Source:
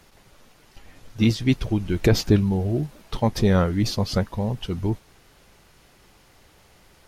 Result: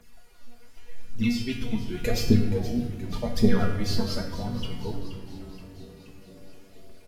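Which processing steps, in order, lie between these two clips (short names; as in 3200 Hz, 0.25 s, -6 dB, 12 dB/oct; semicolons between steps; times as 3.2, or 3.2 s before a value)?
high shelf 8200 Hz +4 dB; phaser 0.87 Hz, delay 4.6 ms, feedback 73%; resonator 240 Hz, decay 0.43 s, harmonics all, mix 90%; frequency-shifting echo 0.475 s, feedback 61%, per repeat -97 Hz, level -13.5 dB; reverb RT60 1.7 s, pre-delay 5 ms, DRR 5 dB; gain +4 dB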